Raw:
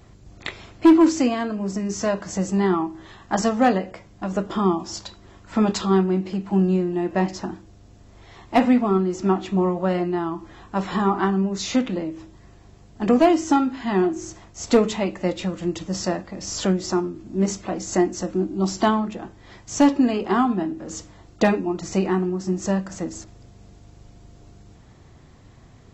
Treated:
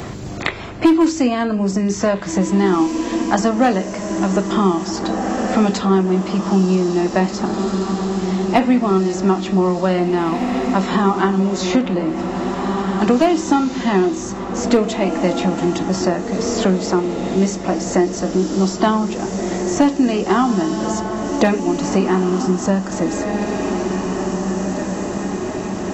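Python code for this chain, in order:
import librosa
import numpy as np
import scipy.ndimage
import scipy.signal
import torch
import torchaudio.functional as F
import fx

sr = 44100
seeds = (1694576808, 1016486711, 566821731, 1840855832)

p1 = x + fx.echo_diffused(x, sr, ms=1927, feedback_pct=44, wet_db=-10.0, dry=0)
p2 = fx.band_squash(p1, sr, depth_pct=70)
y = F.gain(torch.from_numpy(p2), 4.5).numpy()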